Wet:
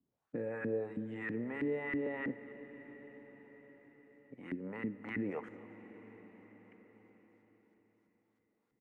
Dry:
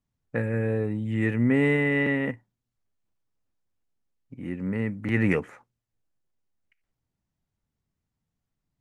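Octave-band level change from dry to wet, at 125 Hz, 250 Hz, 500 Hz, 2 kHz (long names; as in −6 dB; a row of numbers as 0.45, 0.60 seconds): −21.0, −13.0, −10.5, −14.0 decibels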